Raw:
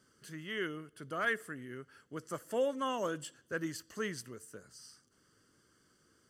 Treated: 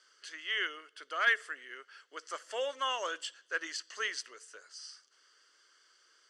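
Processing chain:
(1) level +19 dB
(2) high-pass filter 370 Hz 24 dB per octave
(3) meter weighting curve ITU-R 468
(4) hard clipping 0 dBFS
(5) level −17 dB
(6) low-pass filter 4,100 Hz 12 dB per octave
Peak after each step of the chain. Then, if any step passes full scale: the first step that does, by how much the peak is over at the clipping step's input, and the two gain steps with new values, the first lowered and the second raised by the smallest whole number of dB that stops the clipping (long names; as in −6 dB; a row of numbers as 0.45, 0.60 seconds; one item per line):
−1.0, −1.5, +3.5, 0.0, −17.0, −16.5 dBFS
step 3, 3.5 dB
step 1 +15 dB, step 5 −13 dB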